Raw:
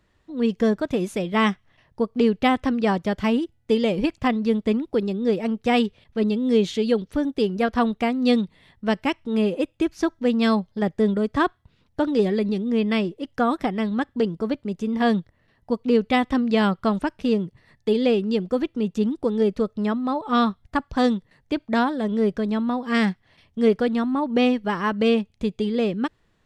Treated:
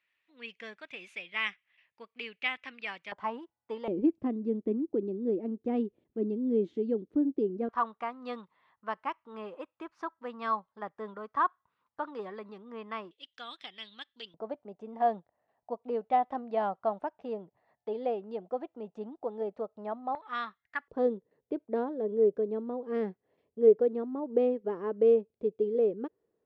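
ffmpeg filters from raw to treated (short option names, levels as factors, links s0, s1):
-af "asetnsamples=n=441:p=0,asendcmd='3.12 bandpass f 960;3.88 bandpass f 330;7.69 bandpass f 1100;13.11 bandpass f 3400;14.34 bandpass f 730;20.15 bandpass f 1900;20.88 bandpass f 440',bandpass=f=2400:t=q:w=4:csg=0"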